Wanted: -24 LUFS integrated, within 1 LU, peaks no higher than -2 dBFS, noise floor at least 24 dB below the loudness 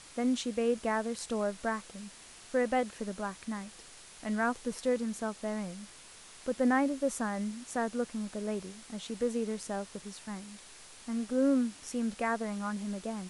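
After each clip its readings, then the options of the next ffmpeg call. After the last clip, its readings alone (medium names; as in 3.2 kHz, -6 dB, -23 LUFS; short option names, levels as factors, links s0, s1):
noise floor -53 dBFS; noise floor target -58 dBFS; loudness -33.5 LUFS; peak level -16.0 dBFS; loudness target -24.0 LUFS
-> -af "afftdn=nr=6:nf=-53"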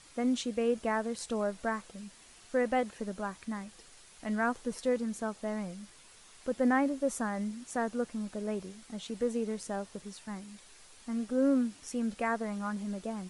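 noise floor -57 dBFS; noise floor target -58 dBFS
-> -af "afftdn=nr=6:nf=-57"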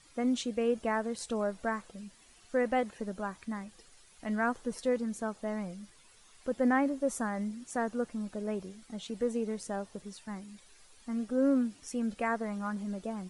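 noise floor -60 dBFS; loudness -33.5 LUFS; peak level -16.0 dBFS; loudness target -24.0 LUFS
-> -af "volume=2.99"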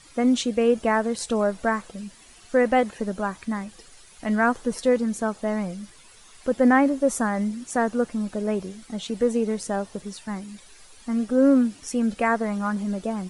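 loudness -24.0 LUFS; peak level -6.5 dBFS; noise floor -50 dBFS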